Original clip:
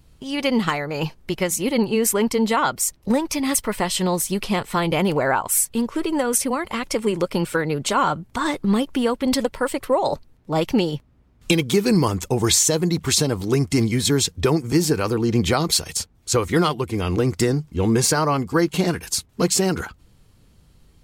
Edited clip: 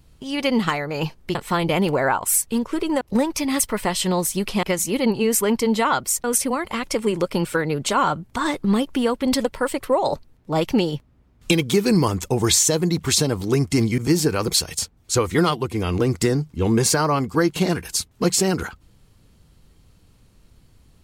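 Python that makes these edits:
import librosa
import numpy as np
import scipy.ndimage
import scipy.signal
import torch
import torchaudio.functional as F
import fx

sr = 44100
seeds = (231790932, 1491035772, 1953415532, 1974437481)

y = fx.edit(x, sr, fx.swap(start_s=1.35, length_s=1.61, other_s=4.58, other_length_s=1.66),
    fx.cut(start_s=13.98, length_s=0.65),
    fx.cut(start_s=15.13, length_s=0.53), tone=tone)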